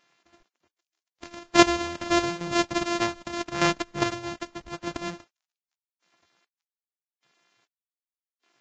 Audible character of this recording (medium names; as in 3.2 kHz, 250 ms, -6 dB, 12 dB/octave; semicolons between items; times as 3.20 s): a buzz of ramps at a fixed pitch in blocks of 128 samples; chopped level 0.83 Hz, depth 65%, duty 35%; a quantiser's noise floor 12-bit, dither none; Vorbis